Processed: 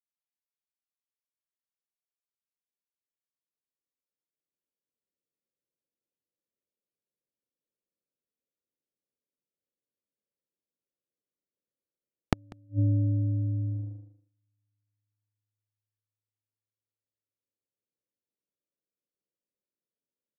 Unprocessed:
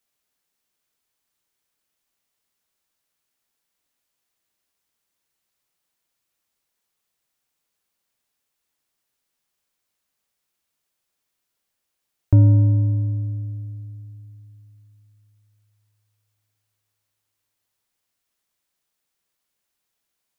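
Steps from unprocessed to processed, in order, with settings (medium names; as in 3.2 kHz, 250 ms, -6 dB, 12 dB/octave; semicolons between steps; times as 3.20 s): recorder AGC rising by 5.7 dB/s; elliptic low-pass 560 Hz, stop band 40 dB; gate -29 dBFS, range -41 dB; high-pass 230 Hz 6 dB/octave; in parallel at +1 dB: compression 6:1, threshold -34 dBFS, peak gain reduction 33 dB; on the sum: saturation -4.5 dBFS, distortion -2 dB; inverted gate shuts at -16 dBFS, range -35 dB; on a send: delay 194 ms -23 dB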